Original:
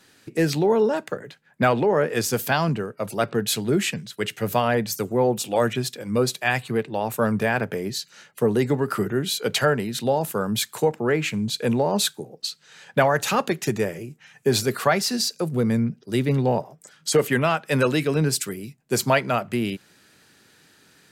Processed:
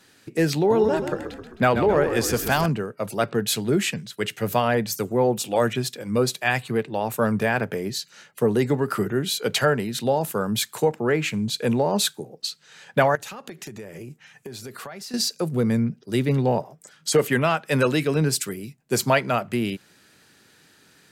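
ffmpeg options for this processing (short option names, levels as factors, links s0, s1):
-filter_complex "[0:a]asettb=1/sr,asplit=3[s0][s1][s2];[s0]atrim=end=0.574[s3];[s1]atrim=start=0.57:end=2.66,asetpts=PTS-STARTPTS,afade=t=in:d=0.004:c=qsin,afade=t=out:st=2.086:d=0.004:c=qsin,asplit=7[s4][s5][s6][s7][s8][s9][s10];[s5]adelay=131,afreqshift=-38,volume=0.355[s11];[s6]adelay=262,afreqshift=-76,volume=0.195[s12];[s7]adelay=393,afreqshift=-114,volume=0.107[s13];[s8]adelay=524,afreqshift=-152,volume=0.0589[s14];[s9]adelay=655,afreqshift=-190,volume=0.0324[s15];[s10]adelay=786,afreqshift=-228,volume=0.0178[s16];[s4][s11][s12][s13][s14][s15][s16]amix=inputs=7:normalize=0,atrim=end_sample=92169[s17];[s2]atrim=start=2.656[s18];[s3][s17]acrossfade=d=0.004:c1=hsin:c2=qsin[s19];[s19][s18]acrossfade=d=0.004:c1=qsin:c2=hsin,asettb=1/sr,asplit=3[s20][s21][s22];[s20]atrim=end=13.154[s23];[s21]atrim=start=13.15:end=15.14,asetpts=PTS-STARTPTS,afade=t=in:d=0.004:c=qsin,afade=t=out:st=1.986:d=0.004:c=qsin,acompressor=threshold=0.0224:ratio=16:attack=3.2:release=140:knee=1:detection=peak[s24];[s22]atrim=start=15.136[s25];[s23][s24]acrossfade=d=0.004:c1=hsin:c2=qsin[s26];[s26][s25]acrossfade=d=0.004:c1=qsin:c2=hsin"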